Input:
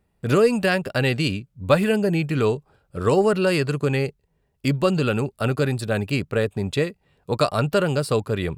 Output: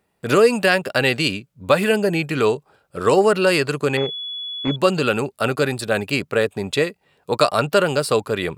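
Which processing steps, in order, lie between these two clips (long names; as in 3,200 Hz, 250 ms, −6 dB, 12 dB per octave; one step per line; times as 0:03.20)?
high-pass filter 410 Hz 6 dB per octave
boost into a limiter +7.5 dB
0:03.97–0:04.76: switching amplifier with a slow clock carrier 3,400 Hz
level −1.5 dB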